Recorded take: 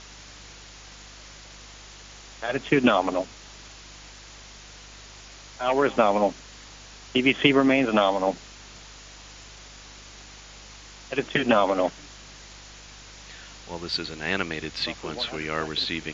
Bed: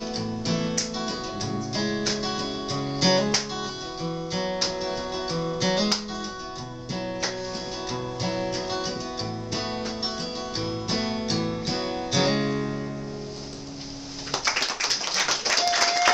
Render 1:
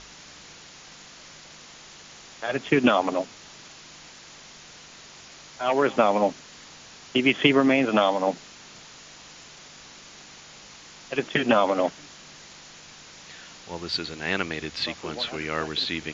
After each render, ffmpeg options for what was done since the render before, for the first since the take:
-af "bandreject=f=50:t=h:w=4,bandreject=f=100:t=h:w=4"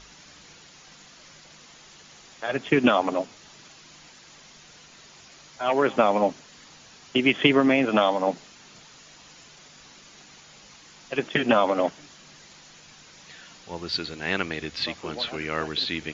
-af "afftdn=nr=6:nf=-47"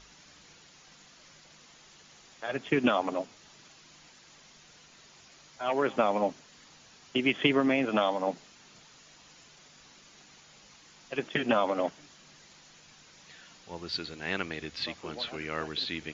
-af "volume=0.501"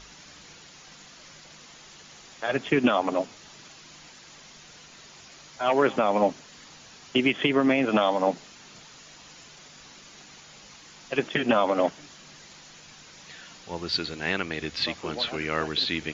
-af "alimiter=limit=0.133:level=0:latency=1:release=245,acontrast=80"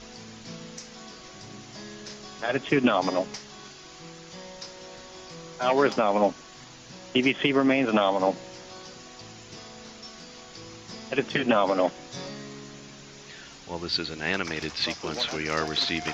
-filter_complex "[1:a]volume=0.158[s0];[0:a][s0]amix=inputs=2:normalize=0"

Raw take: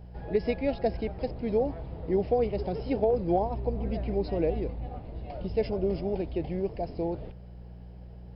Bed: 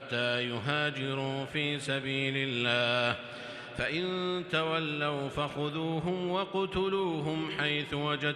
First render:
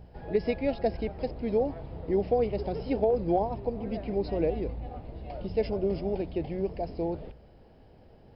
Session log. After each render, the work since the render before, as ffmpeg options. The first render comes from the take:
-af "bandreject=f=60:t=h:w=4,bandreject=f=120:t=h:w=4,bandreject=f=180:t=h:w=4"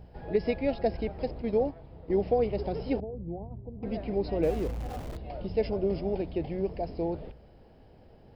-filter_complex "[0:a]asplit=3[s0][s1][s2];[s0]afade=t=out:st=1.41:d=0.02[s3];[s1]agate=range=0.398:threshold=0.0224:ratio=16:release=100:detection=peak,afade=t=in:st=1.41:d=0.02,afade=t=out:st=2.24:d=0.02[s4];[s2]afade=t=in:st=2.24:d=0.02[s5];[s3][s4][s5]amix=inputs=3:normalize=0,asettb=1/sr,asplit=3[s6][s7][s8];[s6]atrim=end=3.004[s9];[s7]atrim=start=3:end=3.83,asetpts=PTS-STARTPTS,afade=t=in:d=0.004:c=qsin,afade=t=out:st=0.826:d=0.004:c=qsin,bandpass=f=100:t=q:w=1.2[s10];[s8]atrim=start=3.826[s11];[s9][s10]acrossfade=d=0.004:c1=hsin:c2=qsin[s12];[s12][s11]acrossfade=d=0.004:c1=qsin:c2=hsin,asettb=1/sr,asplit=3[s13][s14][s15];[s13]atrim=end=4.434[s16];[s14]atrim=start=4.43:end=5.17,asetpts=PTS-STARTPTS,afade=t=in:d=0.004:c=qsin,afade=t=out:st=0.736:d=0.004:c=qsin,aeval=exprs='val(0)+0.5*0.0112*sgn(val(0))':c=same[s17];[s15]atrim=start=5.166[s18];[s16][s17]acrossfade=d=0.004:c1=hsin:c2=qsin[s19];[s19][s18]acrossfade=d=0.004:c1=qsin:c2=hsin"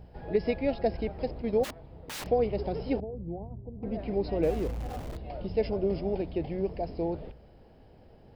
-filter_complex "[0:a]asplit=3[s0][s1][s2];[s0]afade=t=out:st=1.63:d=0.02[s3];[s1]aeval=exprs='(mod(47.3*val(0)+1,2)-1)/47.3':c=same,afade=t=in:st=1.63:d=0.02,afade=t=out:st=2.25:d=0.02[s4];[s2]afade=t=in:st=2.25:d=0.02[s5];[s3][s4][s5]amix=inputs=3:normalize=0,asettb=1/sr,asplit=3[s6][s7][s8];[s6]atrim=end=3.514[s9];[s7]atrim=start=3.51:end=3.99,asetpts=PTS-STARTPTS,afade=t=in:d=0.004:c=qsin,afade=t=out:st=0.476:d=0.004:c=qsin,highshelf=f=2000:g=-11[s10];[s8]atrim=start=3.986[s11];[s9][s10]acrossfade=d=0.004:c1=hsin:c2=qsin[s12];[s12][s11]acrossfade=d=0.004:c1=qsin:c2=hsin"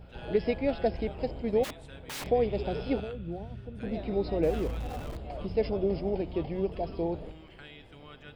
-filter_complex "[1:a]volume=0.112[s0];[0:a][s0]amix=inputs=2:normalize=0"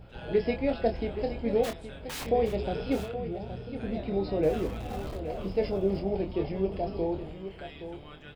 -filter_complex "[0:a]asplit=2[s0][s1];[s1]adelay=26,volume=0.473[s2];[s0][s2]amix=inputs=2:normalize=0,aecho=1:1:821:0.282"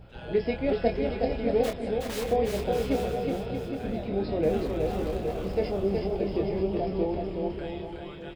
-af "aecho=1:1:370|629|810.3|937.2|1026:0.631|0.398|0.251|0.158|0.1"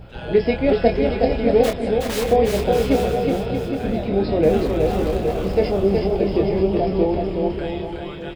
-af "volume=2.82,alimiter=limit=0.708:level=0:latency=1"

